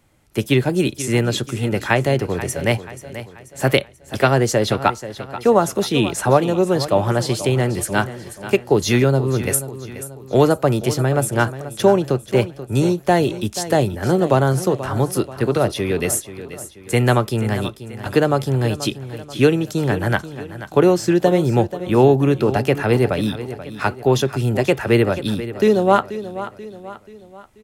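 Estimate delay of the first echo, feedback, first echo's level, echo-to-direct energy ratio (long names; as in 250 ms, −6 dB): 484 ms, 46%, −13.5 dB, −12.5 dB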